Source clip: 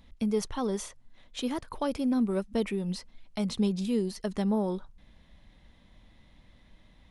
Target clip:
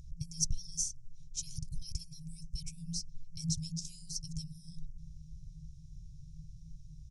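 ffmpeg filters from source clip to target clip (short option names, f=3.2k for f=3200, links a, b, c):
-af "afftfilt=real='re*(1-between(b*sr/4096,170,2200))':imag='im*(1-between(b*sr/4096,170,2200))':win_size=4096:overlap=0.75,firequalizer=gain_entry='entry(110,0);entry(170,12);entry(270,10);entry(590,-28);entry(870,-22);entry(1400,-22);entry(2300,-30);entry(3400,-28);entry(5600,3);entry(11000,-13)':delay=0.05:min_phase=1,volume=8.5dB"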